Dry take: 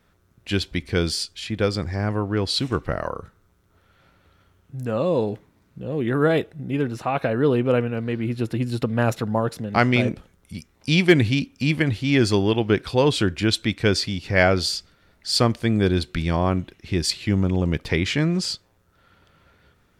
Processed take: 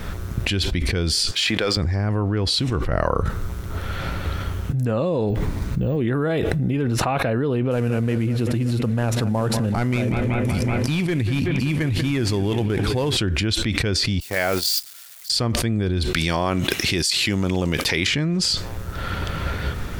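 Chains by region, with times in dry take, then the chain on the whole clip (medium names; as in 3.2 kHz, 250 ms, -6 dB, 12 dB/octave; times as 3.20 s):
1.31–1.77 s: frequency weighting A + waveshaping leveller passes 1
5.30–5.96 s: careless resampling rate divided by 2×, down none, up hold + bass shelf 64 Hz +10 dB
7.71–13.17 s: CVSD coder 64 kbps + bucket-brigade echo 189 ms, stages 4096, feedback 75%, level -17.5 dB
14.20–15.30 s: zero-crossing glitches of -20 dBFS + gate -21 dBFS, range -39 dB + high-pass 450 Hz 6 dB/octave
16.13–18.07 s: high-pass 360 Hz 6 dB/octave + treble shelf 3.3 kHz +12 dB
whole clip: bass shelf 87 Hz +12 dB; level flattener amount 100%; trim -12 dB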